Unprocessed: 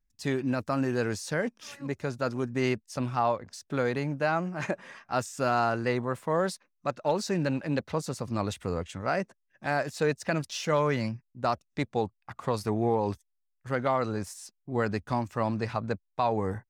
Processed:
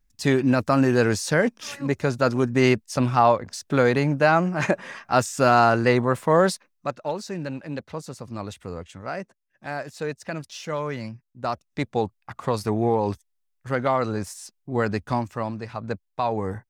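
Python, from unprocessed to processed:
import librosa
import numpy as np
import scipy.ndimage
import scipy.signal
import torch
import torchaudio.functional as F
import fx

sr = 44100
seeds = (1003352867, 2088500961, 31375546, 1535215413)

y = fx.gain(x, sr, db=fx.line((6.49, 9.0), (7.21, -3.0), (11.12, -3.0), (11.93, 4.5), (15.16, 4.5), (15.68, -4.0), (15.91, 2.0)))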